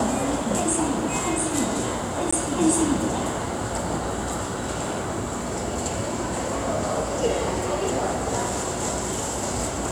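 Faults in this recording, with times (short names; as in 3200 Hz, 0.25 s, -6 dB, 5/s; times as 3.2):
2.31–2.33 gap 15 ms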